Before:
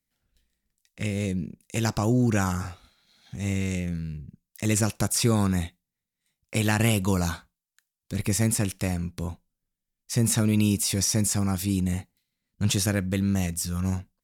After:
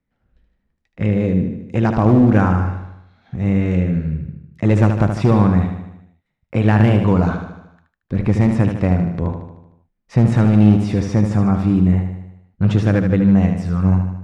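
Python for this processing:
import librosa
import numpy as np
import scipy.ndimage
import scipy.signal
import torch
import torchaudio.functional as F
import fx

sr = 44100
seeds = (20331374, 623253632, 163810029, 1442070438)

p1 = scipy.signal.sosfilt(scipy.signal.butter(2, 1400.0, 'lowpass', fs=sr, output='sos'), x)
p2 = fx.rider(p1, sr, range_db=10, speed_s=2.0)
p3 = p1 + (p2 * librosa.db_to_amplitude(1.5))
p4 = np.clip(p3, -10.0 ** (-10.5 / 20.0), 10.0 ** (-10.5 / 20.0))
p5 = fx.echo_feedback(p4, sr, ms=76, feedback_pct=56, wet_db=-7.0)
y = p5 * librosa.db_to_amplitude(3.0)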